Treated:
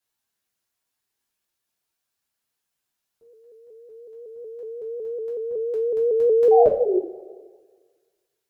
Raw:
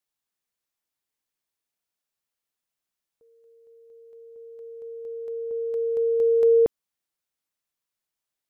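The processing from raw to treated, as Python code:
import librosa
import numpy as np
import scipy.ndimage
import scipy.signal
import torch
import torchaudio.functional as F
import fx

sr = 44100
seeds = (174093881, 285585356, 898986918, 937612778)

y = fx.spec_paint(x, sr, seeds[0], shape='fall', start_s=6.51, length_s=0.46, low_hz=350.0, high_hz=820.0, level_db=-22.0)
y = fx.rev_double_slope(y, sr, seeds[1], early_s=0.34, late_s=1.5, knee_db=-18, drr_db=-4.5)
y = fx.dynamic_eq(y, sr, hz=520.0, q=0.88, threshold_db=-28.0, ratio=4.0, max_db=-4)
y = fx.vibrato_shape(y, sr, shape='saw_up', rate_hz=5.4, depth_cents=100.0)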